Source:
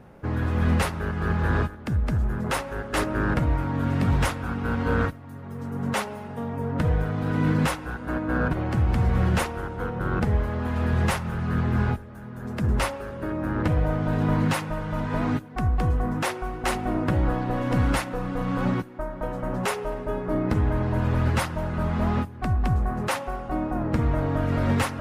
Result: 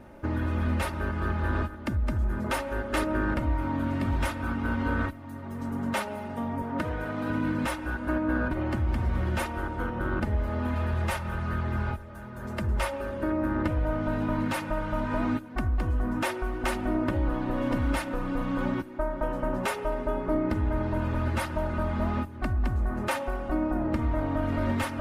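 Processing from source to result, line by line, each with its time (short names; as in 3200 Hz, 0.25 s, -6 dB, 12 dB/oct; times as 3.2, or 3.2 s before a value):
6.62–7.3 HPF 240 Hz 6 dB/oct
10.74–12.92 bell 270 Hz -12 dB 0.38 oct
whole clip: compressor 2.5:1, threshold -27 dBFS; dynamic EQ 6500 Hz, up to -4 dB, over -54 dBFS, Q 0.98; comb 3.3 ms, depth 63%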